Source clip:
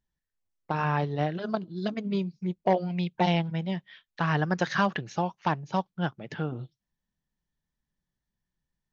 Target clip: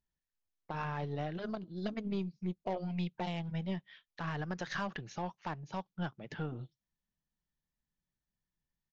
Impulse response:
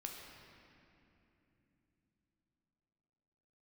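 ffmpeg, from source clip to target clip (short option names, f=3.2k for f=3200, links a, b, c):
-af "aeval=exprs='0.299*(cos(1*acos(clip(val(0)/0.299,-1,1)))-cos(1*PI/2))+0.0133*(cos(8*acos(clip(val(0)/0.299,-1,1)))-cos(8*PI/2))':c=same,aresample=16000,aresample=44100,alimiter=limit=-20.5dB:level=0:latency=1:release=93,volume=-6dB"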